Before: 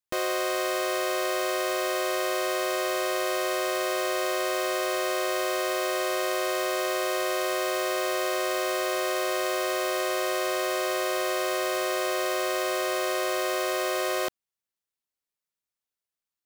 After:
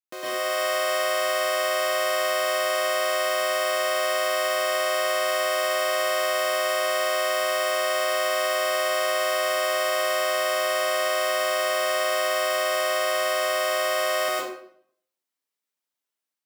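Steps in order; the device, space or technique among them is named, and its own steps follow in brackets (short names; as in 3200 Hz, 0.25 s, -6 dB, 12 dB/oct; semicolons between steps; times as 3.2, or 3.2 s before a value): far laptop microphone (reverb RT60 0.65 s, pre-delay 0.103 s, DRR -7.5 dB; HPF 180 Hz 24 dB/oct; AGC gain up to 4.5 dB); gain -8.5 dB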